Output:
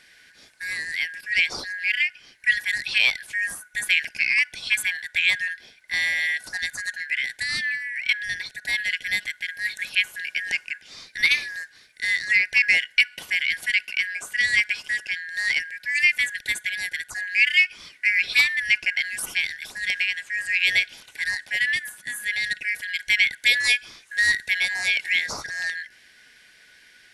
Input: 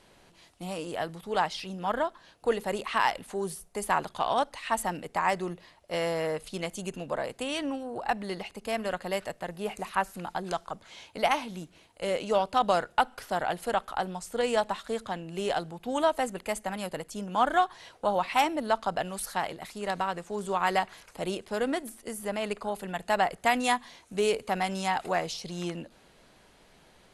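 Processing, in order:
band-splitting scrambler in four parts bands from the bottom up 4123
level +5.5 dB

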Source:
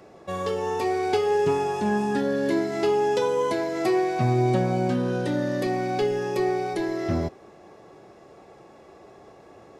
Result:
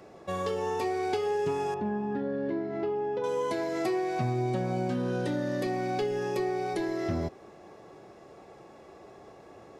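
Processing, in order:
downward compressor 3 to 1, threshold −26 dBFS, peak gain reduction 6.5 dB
0:01.74–0:03.24: head-to-tape spacing loss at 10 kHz 40 dB
level −1.5 dB

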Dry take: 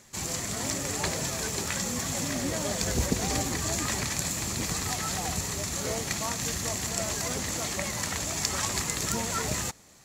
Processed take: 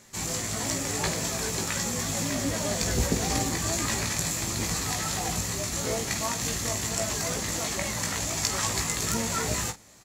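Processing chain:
ambience of single reflections 18 ms −4.5 dB, 48 ms −12.5 dB

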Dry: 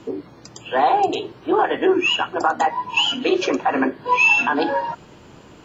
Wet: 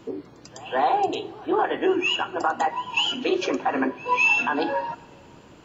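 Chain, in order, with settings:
echo ahead of the sound 203 ms −22 dB
on a send at −20.5 dB: convolution reverb RT60 2.4 s, pre-delay 19 ms
on the sum: level −4.5 dB

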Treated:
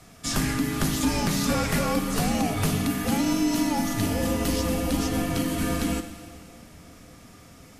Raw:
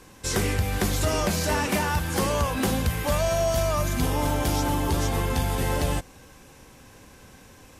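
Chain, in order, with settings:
high-pass filter 66 Hz
on a send: delay with a band-pass on its return 573 ms, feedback 69%, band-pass 460 Hz, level −21.5 dB
on the sum: four-comb reverb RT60 2.1 s, combs from 33 ms, DRR 9.5 dB
frequency shifter −360 Hz

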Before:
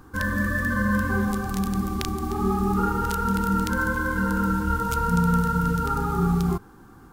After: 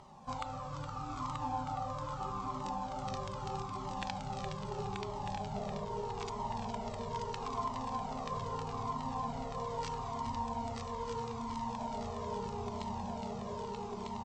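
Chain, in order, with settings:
formants moved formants +6 semitones
low-shelf EQ 240 Hz −10.5 dB
echo machine with several playback heads 208 ms, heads first and third, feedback 70%, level −8.5 dB
on a send at −16.5 dB: convolution reverb, pre-delay 3 ms
on the sum: downward compressor 6 to 1, threshold −35 dBFS, peak gain reduction 14 dB
wrong playback speed 15 ips tape played at 7.5 ips
low-pass filter 6,000 Hz 12 dB per octave
low-shelf EQ 120 Hz −10.5 dB
single-tap delay 932 ms −4 dB
flanger whose copies keep moving one way falling 0.78 Hz
level +3.5 dB

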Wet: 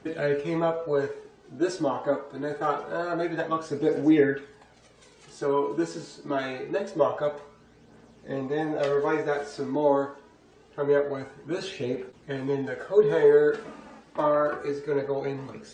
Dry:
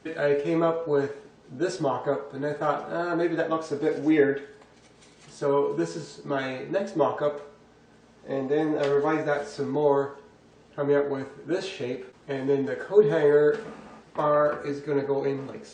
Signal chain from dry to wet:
phase shifter 0.25 Hz, delay 3.7 ms, feedback 42%
level −1.5 dB

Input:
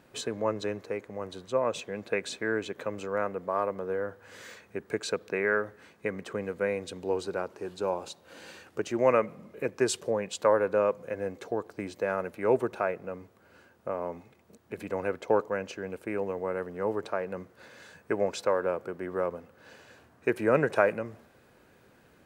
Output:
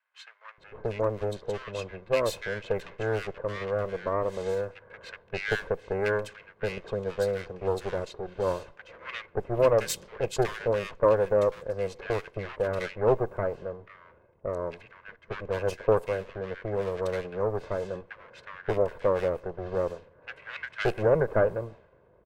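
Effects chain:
lower of the sound and its delayed copy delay 1.9 ms
multiband delay without the direct sound highs, lows 580 ms, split 1,500 Hz
low-pass that shuts in the quiet parts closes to 840 Hz, open at −27.5 dBFS
level +2.5 dB

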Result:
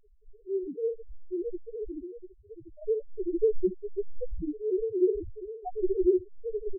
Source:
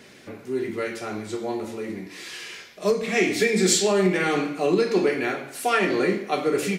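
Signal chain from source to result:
running median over 25 samples
rotating-speaker cabinet horn 1.2 Hz, later 7 Hz, at 0:03.67
flutter between parallel walls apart 12 metres, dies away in 1.3 s
in parallel at −4 dB: sample-rate reduction 3,100 Hz, jitter 0%
on the sum: automatic gain control gain up to 9 dB
reverb reduction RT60 1.9 s
high-shelf EQ 2,800 Hz −11 dB
on a send: single-tap delay 692 ms −10.5 dB
on the sum: linear-prediction vocoder at 8 kHz pitch kept
square-wave tremolo 1.2 Hz, depth 60%, duty 40%
spectral peaks only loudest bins 1

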